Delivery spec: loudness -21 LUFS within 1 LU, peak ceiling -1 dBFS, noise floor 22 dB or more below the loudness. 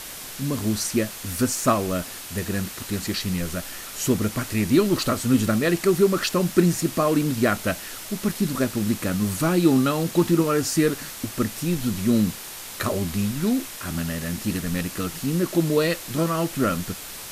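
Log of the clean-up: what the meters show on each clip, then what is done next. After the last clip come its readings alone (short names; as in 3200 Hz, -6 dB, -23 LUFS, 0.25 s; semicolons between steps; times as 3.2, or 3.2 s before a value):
noise floor -37 dBFS; noise floor target -46 dBFS; loudness -23.5 LUFS; peak -5.0 dBFS; loudness target -21.0 LUFS
-> denoiser 9 dB, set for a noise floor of -37 dBFS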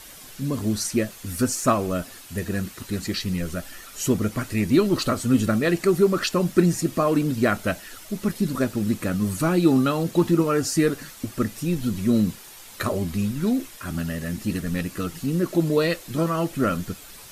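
noise floor -44 dBFS; noise floor target -46 dBFS
-> denoiser 6 dB, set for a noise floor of -44 dBFS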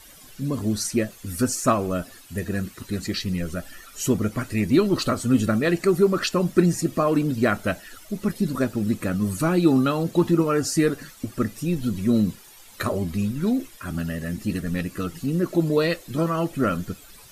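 noise floor -48 dBFS; loudness -24.0 LUFS; peak -5.5 dBFS; loudness target -21.0 LUFS
-> gain +3 dB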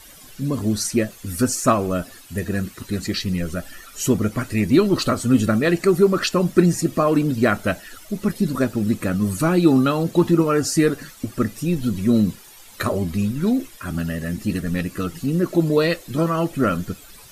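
loudness -21.0 LUFS; peak -2.5 dBFS; noise floor -45 dBFS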